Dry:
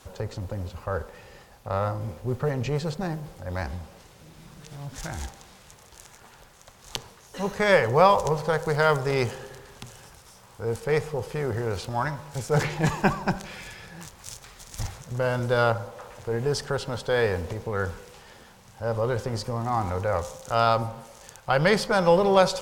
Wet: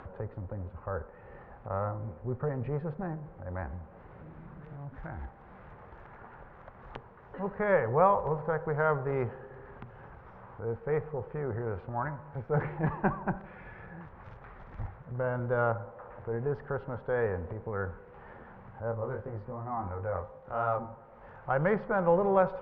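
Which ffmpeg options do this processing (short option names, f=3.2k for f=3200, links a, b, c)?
-filter_complex "[0:a]asplit=3[a][b][c];[a]afade=t=out:st=18.91:d=0.02[d];[b]flanger=delay=19:depth=2.9:speed=2.9,afade=t=in:st=18.91:d=0.02,afade=t=out:st=21.39:d=0.02[e];[c]afade=t=in:st=21.39:d=0.02[f];[d][e][f]amix=inputs=3:normalize=0,lowpass=f=1.7k:w=0.5412,lowpass=f=1.7k:w=1.3066,acompressor=mode=upward:threshold=-33dB:ratio=2.5,volume=-6dB"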